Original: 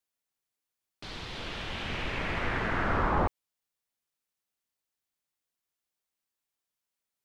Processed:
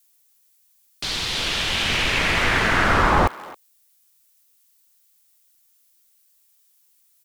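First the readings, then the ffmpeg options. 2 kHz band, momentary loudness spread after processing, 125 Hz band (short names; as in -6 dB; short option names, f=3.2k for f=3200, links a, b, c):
+13.5 dB, 9 LU, +8.0 dB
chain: -filter_complex "[0:a]asplit=2[a][b];[b]adelay=270,highpass=300,lowpass=3.4k,asoftclip=type=hard:threshold=-23dB,volume=-19dB[c];[a][c]amix=inputs=2:normalize=0,crystalizer=i=5.5:c=0,volume=8dB"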